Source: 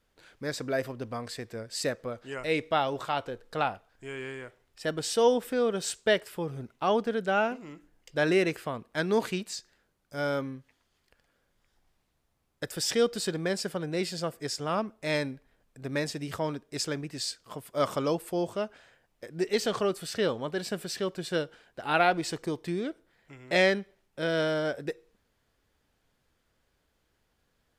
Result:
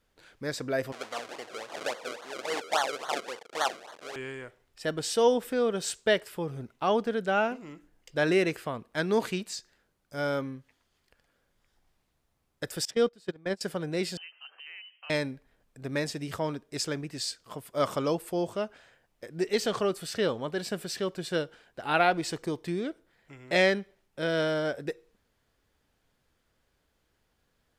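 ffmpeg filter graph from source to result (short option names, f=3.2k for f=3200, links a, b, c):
-filter_complex "[0:a]asettb=1/sr,asplit=3[a][b][c];[a]atrim=end=0.924[d];[b]atrim=start=0.92:end=4.16,asetpts=PTS-STARTPTS,afade=t=in:d=0.004:c=qsin,afade=t=out:st=3.236:d=0.004:c=qsin,aeval=exprs='val(0)+0.5*0.0133*sgn(val(0))':c=same,acrusher=samples=34:mix=1:aa=0.000001:lfo=1:lforange=34:lforate=3.6,highpass=560,lowpass=7.8k[e];[c]atrim=start=4.156[f];[d][e]acrossfade=d=0.004:c1=hsin:c2=qsin[g];[g][f]acrossfade=d=0.004:c1=qsin:c2=hsin,asettb=1/sr,asplit=3[h][i][j];[h]atrim=end=12.854[k];[i]atrim=start=12.85:end=13.61,asetpts=PTS-STARTPTS,afade=t=in:d=0.004:c=qsin,afade=t=out:st=0.756:d=0.004:c=qsin,agate=range=-21dB:threshold=-29dB:ratio=16:release=100:detection=peak,highshelf=f=4.9k:g=-8.5[l];[j]atrim=start=13.606[m];[k][l]acrossfade=d=0.004:c1=hsin:c2=qsin[n];[n][m]acrossfade=d=0.004:c1=qsin:c2=hsin,asettb=1/sr,asplit=3[o][p][q];[o]atrim=end=14.174[r];[p]atrim=start=14.17:end=15.1,asetpts=PTS-STARTPTS,afade=t=in:d=0.004:c=qsin,afade=t=out:st=0.926:d=0.004:c=qsin,lowpass=f=2.7k:t=q:w=0.5098,lowpass=f=2.7k:t=q:w=0.6013,lowpass=f=2.7k:t=q:w=0.9,lowpass=f=2.7k:t=q:w=2.563,afreqshift=-3200,acompressor=threshold=-47dB:ratio=3:attack=3.2:release=140:knee=1:detection=peak,highpass=f=360:w=0.5412,highpass=f=360:w=1.3066[s];[q]atrim=start=15.096[t];[r][s]acrossfade=d=0.004:c1=hsin:c2=qsin[u];[u][t]acrossfade=d=0.004:c1=qsin:c2=hsin"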